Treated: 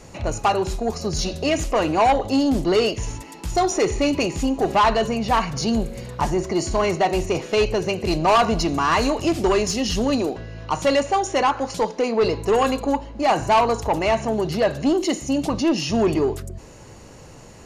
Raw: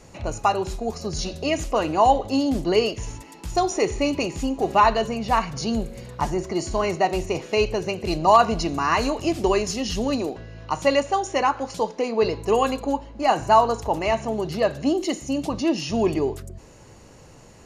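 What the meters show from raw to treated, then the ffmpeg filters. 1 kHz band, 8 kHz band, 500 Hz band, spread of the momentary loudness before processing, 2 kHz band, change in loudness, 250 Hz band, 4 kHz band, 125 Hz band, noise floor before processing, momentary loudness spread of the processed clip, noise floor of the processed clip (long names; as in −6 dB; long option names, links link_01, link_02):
+0.5 dB, +3.5 dB, +2.0 dB, 10 LU, +2.5 dB, +2.0 dB, +3.0 dB, +3.0 dB, +3.5 dB, −47 dBFS, 7 LU, −43 dBFS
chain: -af "asoftclip=type=tanh:threshold=-16.5dB,volume=4.5dB"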